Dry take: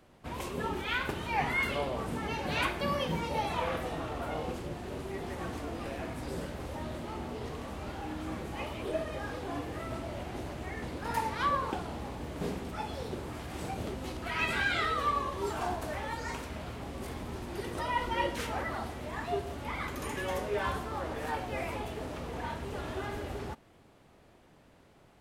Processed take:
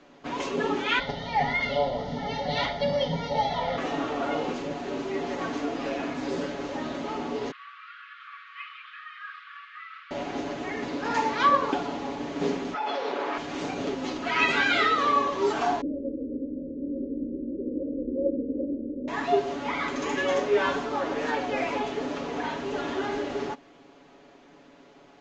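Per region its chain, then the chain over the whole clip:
0.99–3.78 Butterworth band-stop 1600 Hz, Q 4.1 + low shelf 180 Hz +10.5 dB + fixed phaser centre 1700 Hz, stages 8
7.51–10.11 brick-wall FIR high-pass 1100 Hz + air absorption 430 m
12.74–13.38 HPF 650 Hz + tape spacing loss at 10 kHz 25 dB + fast leveller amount 100%
15.81–19.08 steep low-pass 540 Hz 96 dB/oct + comb 3.6 ms, depth 74%
whole clip: elliptic low-pass 6800 Hz, stop band 40 dB; resonant low shelf 170 Hz -11.5 dB, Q 1.5; comb 7.1 ms; gain +6.5 dB

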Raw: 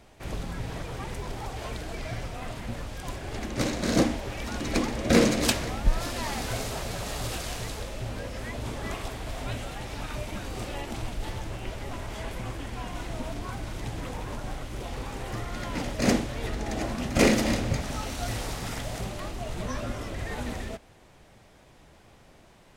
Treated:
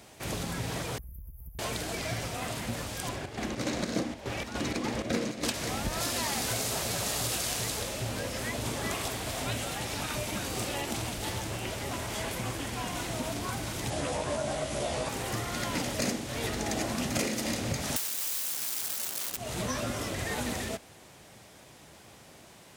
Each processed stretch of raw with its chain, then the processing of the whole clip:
0.98–1.59 inverse Chebyshev band-stop 130–8200 Hz + resonant low shelf 670 Hz +9 dB, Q 1.5 + compressor 4:1, threshold -31 dBFS
3.08–5.54 LPF 3200 Hz 6 dB/oct + chopper 3.4 Hz, depth 60%, duty 60%
13.9–15.09 steep low-pass 11000 Hz 96 dB/oct + bell 620 Hz +15 dB 0.24 oct + doubler 14 ms -2.5 dB
17.96–19.37 wrapped overs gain 31 dB + tilt +1.5 dB/oct
whole clip: HPF 91 Hz 12 dB/oct; high shelf 4400 Hz +10.5 dB; compressor 16:1, threshold -29 dBFS; gain +2 dB

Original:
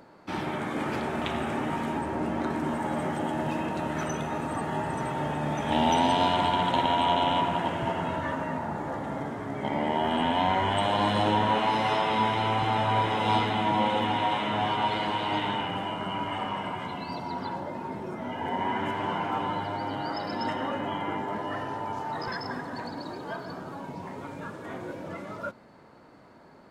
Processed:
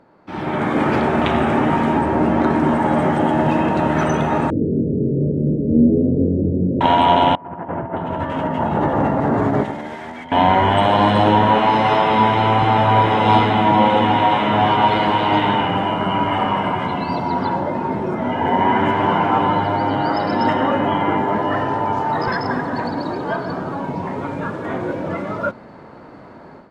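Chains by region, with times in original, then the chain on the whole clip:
4.5–6.81 steep low-pass 510 Hz 72 dB/oct + flutter echo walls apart 3.7 m, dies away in 0.22 s
7.35–10.32 negative-ratio compressor -34 dBFS, ratio -0.5 + bands offset in time lows, highs 0.61 s, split 1800 Hz
whole clip: LPF 2000 Hz 6 dB/oct; AGC gain up to 14 dB

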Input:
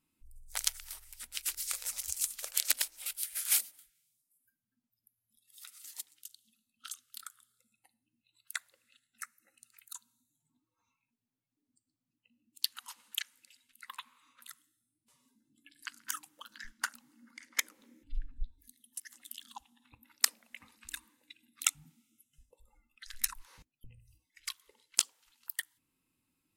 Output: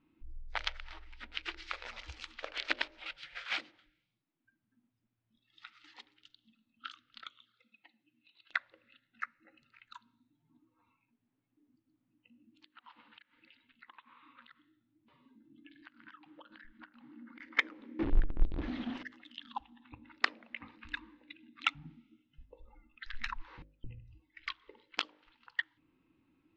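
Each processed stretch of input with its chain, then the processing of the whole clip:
7.22–8.53 weighting filter D + envelope flanger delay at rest 9.4 ms, full sweep at -48.5 dBFS
12.64–17.4 steep low-pass 4600 Hz + compressor 16:1, threshold -57 dBFS
17.99–19.03 zero-crossing step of -37.5 dBFS + air absorption 56 m
whole clip: Bessel low-pass 2200 Hz, order 6; bell 320 Hz +9.5 dB 0.38 oct; de-hum 50.64 Hz, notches 12; gain +8.5 dB

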